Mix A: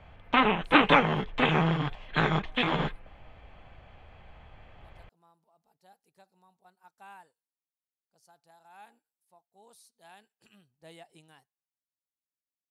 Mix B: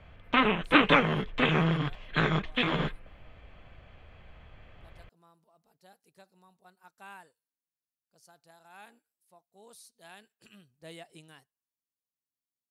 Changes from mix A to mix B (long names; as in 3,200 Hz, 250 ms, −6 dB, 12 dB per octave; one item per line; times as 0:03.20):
speech +5.0 dB
master: add parametric band 830 Hz −7.5 dB 0.45 octaves